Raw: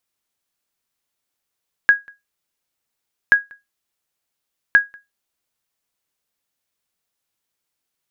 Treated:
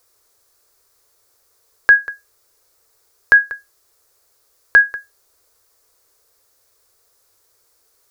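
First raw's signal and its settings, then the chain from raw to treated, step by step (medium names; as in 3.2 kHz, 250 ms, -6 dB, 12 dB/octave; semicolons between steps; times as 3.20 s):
sonar ping 1.65 kHz, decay 0.19 s, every 1.43 s, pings 3, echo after 0.19 s, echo -29.5 dB -3 dBFS
FFT filter 110 Hz 0 dB, 150 Hz -27 dB, 440 Hz +5 dB, 810 Hz -4 dB, 1.2 kHz 0 dB, 3 kHz -12 dB, 4.6 kHz -1 dB; in parallel at +1 dB: compression, threshold -25 dBFS; on the sum: loudness maximiser +13.5 dB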